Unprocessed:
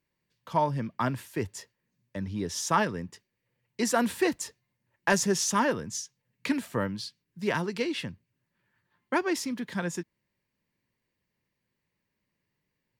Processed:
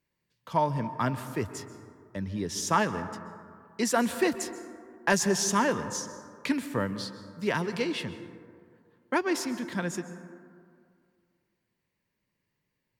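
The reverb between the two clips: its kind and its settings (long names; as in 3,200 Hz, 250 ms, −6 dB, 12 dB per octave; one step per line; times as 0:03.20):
dense smooth reverb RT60 2.2 s, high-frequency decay 0.3×, pre-delay 115 ms, DRR 12 dB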